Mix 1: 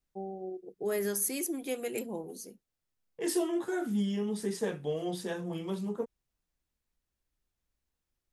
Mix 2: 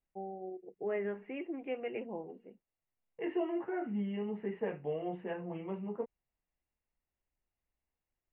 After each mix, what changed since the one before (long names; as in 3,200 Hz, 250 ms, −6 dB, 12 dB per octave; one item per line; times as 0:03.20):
master: add Chebyshev low-pass with heavy ripple 2,900 Hz, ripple 6 dB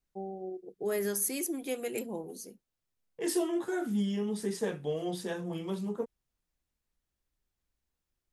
master: remove Chebyshev low-pass with heavy ripple 2,900 Hz, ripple 6 dB